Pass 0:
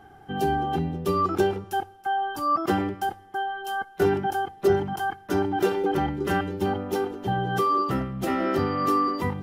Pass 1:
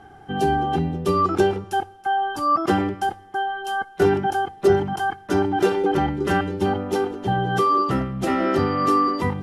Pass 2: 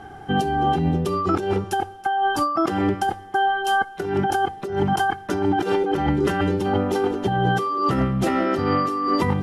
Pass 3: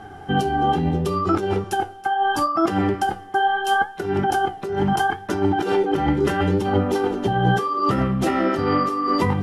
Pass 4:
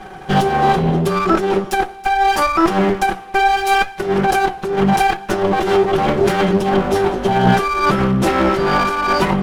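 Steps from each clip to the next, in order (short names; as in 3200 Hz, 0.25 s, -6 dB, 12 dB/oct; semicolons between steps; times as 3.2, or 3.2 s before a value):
LPF 11000 Hz 24 dB/oct; gain +4 dB
negative-ratio compressor -24 dBFS, ratio -1; gain +3 dB
flange 0.75 Hz, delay 8.7 ms, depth 9.6 ms, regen +62%; gain +5 dB
minimum comb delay 5.3 ms; gain +6.5 dB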